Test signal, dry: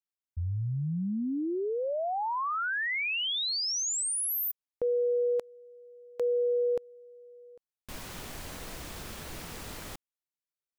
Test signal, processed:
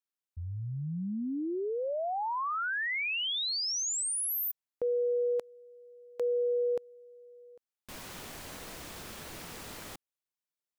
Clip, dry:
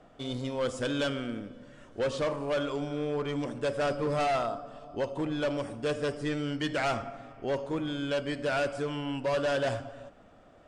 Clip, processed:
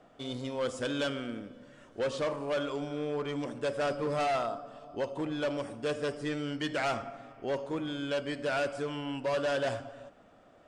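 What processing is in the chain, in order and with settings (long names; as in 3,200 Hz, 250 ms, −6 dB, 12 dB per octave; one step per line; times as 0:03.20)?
low-shelf EQ 98 Hz −9 dB
level −1.5 dB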